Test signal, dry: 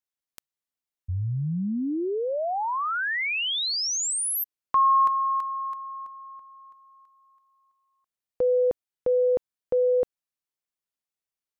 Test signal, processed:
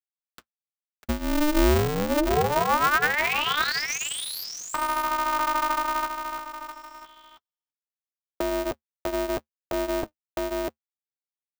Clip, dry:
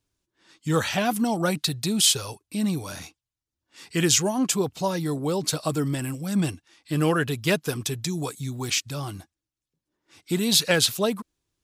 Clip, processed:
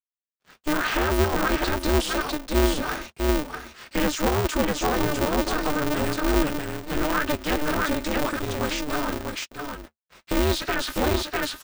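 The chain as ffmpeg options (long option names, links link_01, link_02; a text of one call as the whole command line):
ffmpeg -i in.wav -filter_complex "[0:a]equalizer=frequency=1400:width=4.6:gain=12.5,aecho=1:1:648:0.473,acrossover=split=200|1600[link_01][link_02][link_03];[link_02]acompressor=threshold=-24dB:ratio=6:release=36:knee=2.83:detection=peak[link_04];[link_01][link_04][link_03]amix=inputs=3:normalize=0,acrusher=bits=7:mix=0:aa=0.5,acompressor=threshold=-24dB:ratio=6:attack=0.89:release=27:knee=1,flanger=delay=3.3:depth=6.6:regen=-45:speed=0.94:shape=triangular,lowpass=frequency=2200:poles=1,equalizer=frequency=73:width=2.3:gain=7,aecho=1:1:5:0.47,aeval=exprs='val(0)*sgn(sin(2*PI*150*n/s))':channel_layout=same,volume=8.5dB" out.wav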